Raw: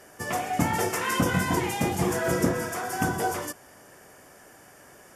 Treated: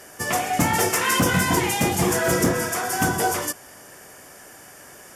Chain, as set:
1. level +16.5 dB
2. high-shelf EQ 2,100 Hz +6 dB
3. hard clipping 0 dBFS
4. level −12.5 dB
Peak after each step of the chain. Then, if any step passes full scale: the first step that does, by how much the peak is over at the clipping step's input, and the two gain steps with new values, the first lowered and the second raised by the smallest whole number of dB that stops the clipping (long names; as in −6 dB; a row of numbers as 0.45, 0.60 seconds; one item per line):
+6.0, +7.0, 0.0, −12.5 dBFS
step 1, 7.0 dB
step 1 +9.5 dB, step 4 −5.5 dB